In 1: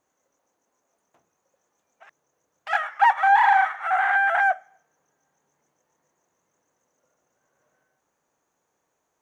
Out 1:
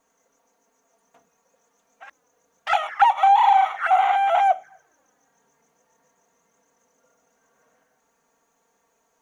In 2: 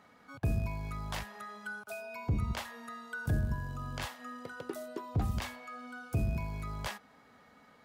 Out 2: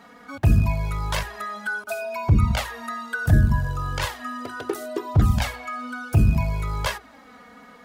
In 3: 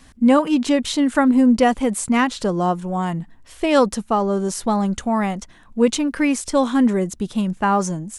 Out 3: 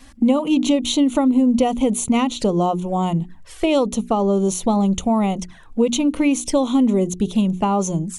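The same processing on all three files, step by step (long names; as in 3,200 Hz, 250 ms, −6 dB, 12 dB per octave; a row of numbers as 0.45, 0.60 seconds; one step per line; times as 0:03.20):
mains-hum notches 60/120/180/240/300/360/420 Hz
downward compressor, threshold −18 dBFS
flanger swept by the level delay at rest 4.4 ms, full sweep at −23.5 dBFS
normalise the peak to −6 dBFS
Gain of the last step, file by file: +10.0, +15.5, +5.5 decibels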